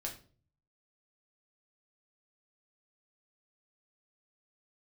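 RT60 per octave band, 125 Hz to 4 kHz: 0.85, 0.55, 0.50, 0.35, 0.30, 0.35 seconds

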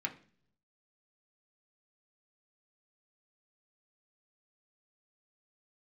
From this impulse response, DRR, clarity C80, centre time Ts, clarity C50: 1.0 dB, 19.5 dB, 8 ms, 14.5 dB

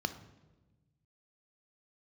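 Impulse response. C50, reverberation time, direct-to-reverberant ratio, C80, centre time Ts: 12.5 dB, 1.2 s, 10.0 dB, 15.5 dB, 8 ms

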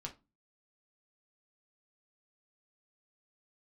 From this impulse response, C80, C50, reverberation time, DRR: 23.5 dB, 14.5 dB, 0.25 s, 0.5 dB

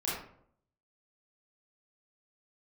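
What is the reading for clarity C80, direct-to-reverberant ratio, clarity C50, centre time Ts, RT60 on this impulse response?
5.0 dB, −8.0 dB, 0.0 dB, 59 ms, 0.65 s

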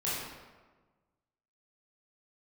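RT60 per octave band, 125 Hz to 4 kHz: 1.5, 1.5, 1.4, 1.3, 1.1, 0.85 seconds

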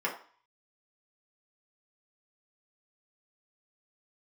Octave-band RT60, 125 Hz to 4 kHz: 0.25, 0.40, 0.40, 0.55, 0.45, 0.45 seconds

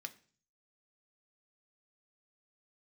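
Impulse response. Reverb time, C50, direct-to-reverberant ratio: 0.45 s, 18.0 dB, 6.5 dB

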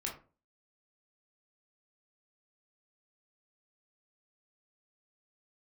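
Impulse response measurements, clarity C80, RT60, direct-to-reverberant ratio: 14.5 dB, 0.35 s, −2.0 dB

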